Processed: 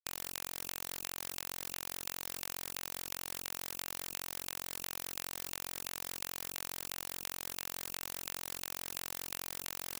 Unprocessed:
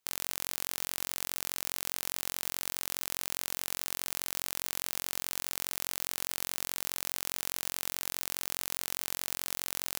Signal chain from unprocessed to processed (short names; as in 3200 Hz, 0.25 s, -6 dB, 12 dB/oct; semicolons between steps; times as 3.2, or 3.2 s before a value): Butterworth band-stop 2600 Hz, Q 2.5; low shelf 69 Hz +3 dB; thin delay 0.581 s, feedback 74%, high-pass 1700 Hz, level -21 dB; LFO low-pass saw down 2.9 Hz 270–2500 Hz; bit-crush 9-bit; spectral compressor 10:1; gain +6.5 dB